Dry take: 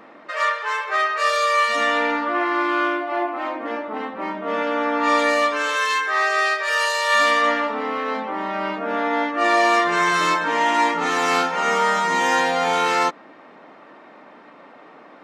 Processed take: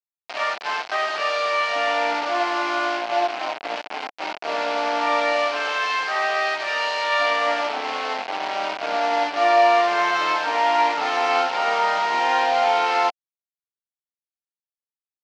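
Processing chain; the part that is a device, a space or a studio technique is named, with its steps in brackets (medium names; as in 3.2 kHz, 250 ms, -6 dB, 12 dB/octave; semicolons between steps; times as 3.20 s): hand-held game console (bit crusher 4-bit; cabinet simulation 480–4400 Hz, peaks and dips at 500 Hz -4 dB, 720 Hz +7 dB, 1.2 kHz -5 dB, 1.8 kHz -5 dB, 3.6 kHz -5 dB)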